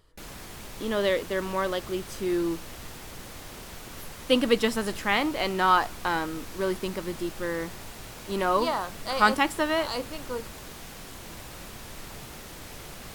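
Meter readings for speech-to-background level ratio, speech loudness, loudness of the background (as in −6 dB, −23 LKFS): 14.0 dB, −27.5 LKFS, −41.5 LKFS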